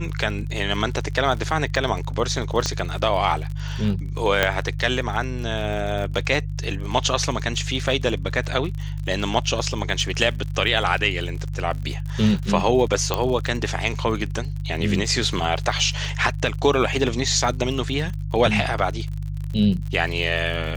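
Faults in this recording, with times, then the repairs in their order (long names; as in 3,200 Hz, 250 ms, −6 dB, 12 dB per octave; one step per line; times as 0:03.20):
surface crackle 51 per second −30 dBFS
mains hum 50 Hz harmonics 3 −28 dBFS
0:02.66: click −9 dBFS
0:04.43: click −3 dBFS
0:13.14: click −7 dBFS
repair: click removal
hum removal 50 Hz, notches 3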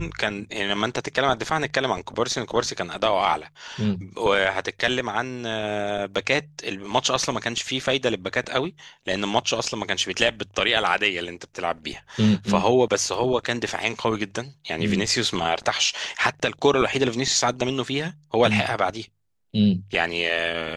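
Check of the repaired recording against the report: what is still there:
0:13.14: click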